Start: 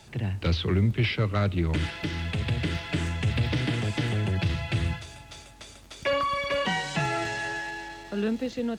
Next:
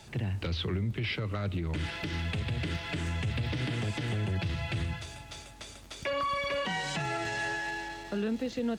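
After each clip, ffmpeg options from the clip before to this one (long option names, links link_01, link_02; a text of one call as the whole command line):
ffmpeg -i in.wav -af "alimiter=limit=-24dB:level=0:latency=1:release=121" out.wav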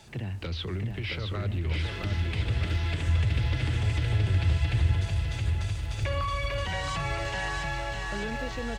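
ffmpeg -i in.wav -filter_complex "[0:a]asubboost=boost=12:cutoff=64,asplit=2[link_01][link_02];[link_02]aecho=0:1:670|1273|1816|2304|2744:0.631|0.398|0.251|0.158|0.1[link_03];[link_01][link_03]amix=inputs=2:normalize=0,volume=-1dB" out.wav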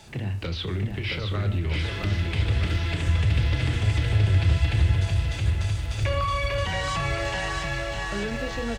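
ffmpeg -i in.wav -filter_complex "[0:a]asplit=2[link_01][link_02];[link_02]adelay=30,volume=-11dB[link_03];[link_01][link_03]amix=inputs=2:normalize=0,bandreject=frequency=121:width_type=h:width=4,bandreject=frequency=242:width_type=h:width=4,bandreject=frequency=363:width_type=h:width=4,bandreject=frequency=484:width_type=h:width=4,bandreject=frequency=605:width_type=h:width=4,bandreject=frequency=726:width_type=h:width=4,bandreject=frequency=847:width_type=h:width=4,bandreject=frequency=968:width_type=h:width=4,bandreject=frequency=1089:width_type=h:width=4,bandreject=frequency=1210:width_type=h:width=4,bandreject=frequency=1331:width_type=h:width=4,bandreject=frequency=1452:width_type=h:width=4,bandreject=frequency=1573:width_type=h:width=4,bandreject=frequency=1694:width_type=h:width=4,bandreject=frequency=1815:width_type=h:width=4,bandreject=frequency=1936:width_type=h:width=4,bandreject=frequency=2057:width_type=h:width=4,bandreject=frequency=2178:width_type=h:width=4,bandreject=frequency=2299:width_type=h:width=4,bandreject=frequency=2420:width_type=h:width=4,bandreject=frequency=2541:width_type=h:width=4,bandreject=frequency=2662:width_type=h:width=4,bandreject=frequency=2783:width_type=h:width=4,bandreject=frequency=2904:width_type=h:width=4,bandreject=frequency=3025:width_type=h:width=4,bandreject=frequency=3146:width_type=h:width=4,bandreject=frequency=3267:width_type=h:width=4,bandreject=frequency=3388:width_type=h:width=4,bandreject=frequency=3509:width_type=h:width=4,bandreject=frequency=3630:width_type=h:width=4,bandreject=frequency=3751:width_type=h:width=4,bandreject=frequency=3872:width_type=h:width=4,bandreject=frequency=3993:width_type=h:width=4,bandreject=frequency=4114:width_type=h:width=4,bandreject=frequency=4235:width_type=h:width=4,bandreject=frequency=4356:width_type=h:width=4,bandreject=frequency=4477:width_type=h:width=4,volume=4dB" out.wav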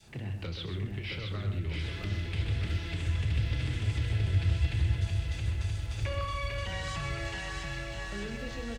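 ffmpeg -i in.wav -filter_complex "[0:a]adynamicequalizer=threshold=0.00891:dfrequency=840:dqfactor=0.82:tfrequency=840:tqfactor=0.82:attack=5:release=100:ratio=0.375:range=2.5:mode=cutabove:tftype=bell,asplit=2[link_01][link_02];[link_02]adelay=128.3,volume=-7dB,highshelf=frequency=4000:gain=-2.89[link_03];[link_01][link_03]amix=inputs=2:normalize=0,volume=-8dB" out.wav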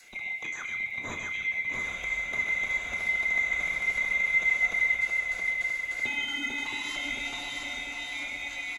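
ffmpeg -i in.wav -filter_complex "[0:a]afftfilt=real='real(if(lt(b,920),b+92*(1-2*mod(floor(b/92),2)),b),0)':imag='imag(if(lt(b,920),b+92*(1-2*mod(floor(b/92),2)),b),0)':win_size=2048:overlap=0.75,acrossover=split=240|380|1800[link_01][link_02][link_03][link_04];[link_04]acompressor=mode=upward:threshold=-53dB:ratio=2.5[link_05];[link_01][link_02][link_03][link_05]amix=inputs=4:normalize=0,volume=1dB" out.wav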